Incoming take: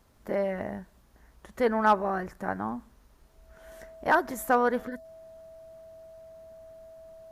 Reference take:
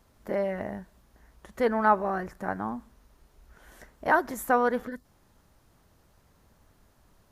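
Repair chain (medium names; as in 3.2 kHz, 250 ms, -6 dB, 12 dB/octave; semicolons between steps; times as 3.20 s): clip repair -12 dBFS; band-stop 650 Hz, Q 30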